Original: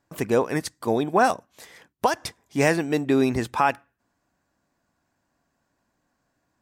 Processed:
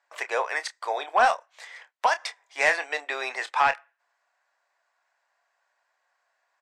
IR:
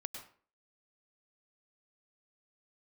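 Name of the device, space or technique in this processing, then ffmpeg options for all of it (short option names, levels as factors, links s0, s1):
intercom: -filter_complex "[0:a]highpass=380,lowpass=4900,highpass=f=630:w=0.5412,highpass=f=630:w=1.3066,equalizer=f=2000:t=o:w=0.5:g=5,asoftclip=type=tanh:threshold=0.237,equalizer=f=8000:t=o:w=0.37:g=4.5,asplit=2[s0][s1];[s1]adelay=28,volume=0.282[s2];[s0][s2]amix=inputs=2:normalize=0,volume=1.26"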